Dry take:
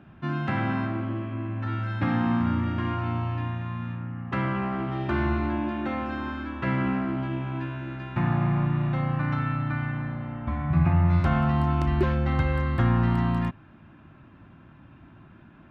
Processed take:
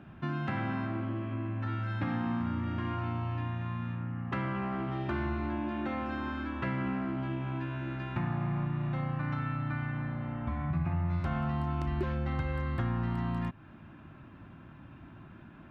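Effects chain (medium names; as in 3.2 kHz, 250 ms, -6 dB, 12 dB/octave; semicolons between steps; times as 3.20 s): compression 2.5:1, threshold -33 dBFS, peak gain reduction 11 dB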